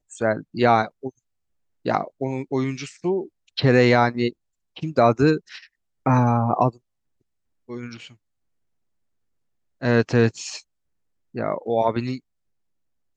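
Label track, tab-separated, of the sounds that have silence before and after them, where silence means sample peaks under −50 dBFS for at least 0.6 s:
1.850000	6.780000	sound
7.680000	8.150000	sound
9.810000	10.610000	sound
11.340000	12.200000	sound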